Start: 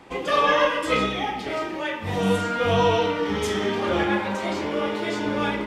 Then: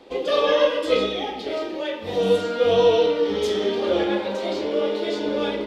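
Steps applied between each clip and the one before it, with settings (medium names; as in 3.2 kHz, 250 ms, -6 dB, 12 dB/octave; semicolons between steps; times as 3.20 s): graphic EQ 125/250/500/1000/2000/4000/8000 Hz -11/+3/+11/-4/-4/+10/-4 dB; trim -4 dB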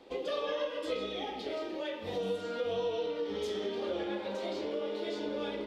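compression 3:1, threshold -26 dBFS, peak gain reduction 10.5 dB; trim -7.5 dB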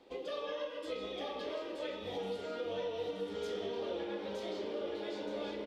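delay 926 ms -3.5 dB; trim -5.5 dB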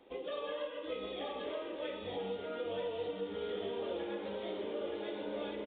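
resampled via 8 kHz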